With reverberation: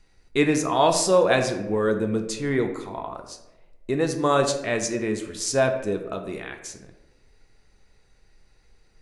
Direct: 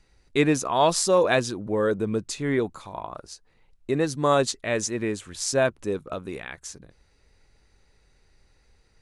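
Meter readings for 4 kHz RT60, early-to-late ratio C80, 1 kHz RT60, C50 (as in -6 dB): 0.55 s, 10.5 dB, 0.85 s, 8.5 dB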